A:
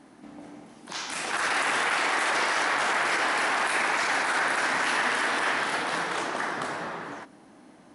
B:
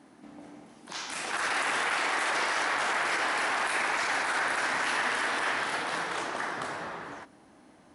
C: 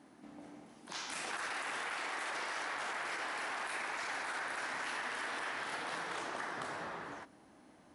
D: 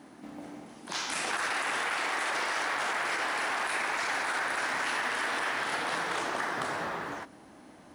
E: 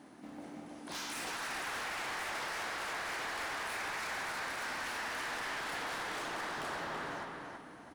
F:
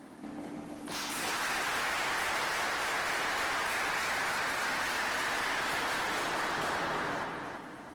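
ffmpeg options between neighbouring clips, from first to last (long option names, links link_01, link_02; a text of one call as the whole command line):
ffmpeg -i in.wav -af "highpass=50,asubboost=boost=3.5:cutoff=87,volume=-3dB" out.wav
ffmpeg -i in.wav -af "acompressor=threshold=-32dB:ratio=6,volume=-4.5dB" out.wav
ffmpeg -i in.wav -af "acrusher=bits=8:mode=log:mix=0:aa=0.000001,volume=8.5dB" out.wav
ffmpeg -i in.wav -filter_complex "[0:a]volume=34.5dB,asoftclip=hard,volume=-34.5dB,asplit=2[link_01][link_02];[link_02]adelay=329,lowpass=frequency=4800:poles=1,volume=-4dB,asplit=2[link_03][link_04];[link_04]adelay=329,lowpass=frequency=4800:poles=1,volume=0.38,asplit=2[link_05][link_06];[link_06]adelay=329,lowpass=frequency=4800:poles=1,volume=0.38,asplit=2[link_07][link_08];[link_08]adelay=329,lowpass=frequency=4800:poles=1,volume=0.38,asplit=2[link_09][link_10];[link_10]adelay=329,lowpass=frequency=4800:poles=1,volume=0.38[link_11];[link_01][link_03][link_05][link_07][link_09][link_11]amix=inputs=6:normalize=0,volume=-4dB" out.wav
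ffmpeg -i in.wav -af "volume=6.5dB" -ar 48000 -c:a libopus -b:a 20k out.opus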